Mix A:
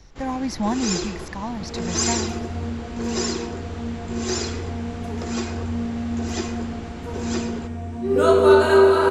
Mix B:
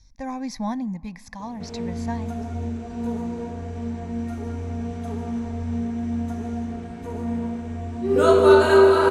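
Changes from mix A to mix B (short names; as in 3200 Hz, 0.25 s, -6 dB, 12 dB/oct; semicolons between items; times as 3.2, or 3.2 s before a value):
speech -4.0 dB; first sound: muted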